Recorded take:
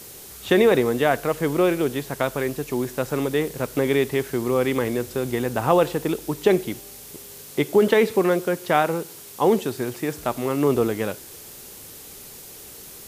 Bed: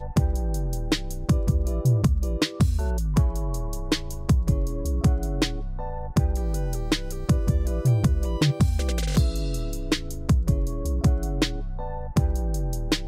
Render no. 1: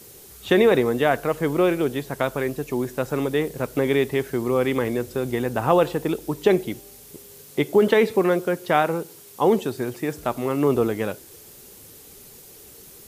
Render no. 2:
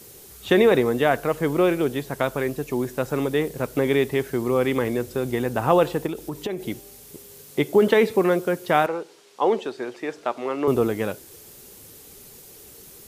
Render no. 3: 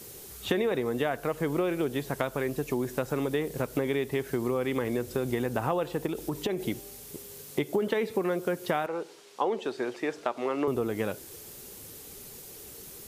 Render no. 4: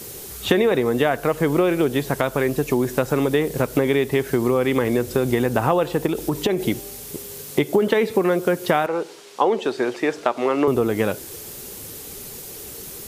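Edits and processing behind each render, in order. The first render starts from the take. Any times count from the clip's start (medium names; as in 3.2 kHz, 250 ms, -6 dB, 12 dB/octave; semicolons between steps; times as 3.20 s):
noise reduction 6 dB, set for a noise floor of -42 dBFS
6.06–6.66 s: compression, threshold -25 dBFS; 8.86–10.68 s: band-pass 370–4800 Hz
compression, threshold -25 dBFS, peak gain reduction 12.5 dB
trim +9.5 dB; peak limiter -3 dBFS, peak gain reduction 2.5 dB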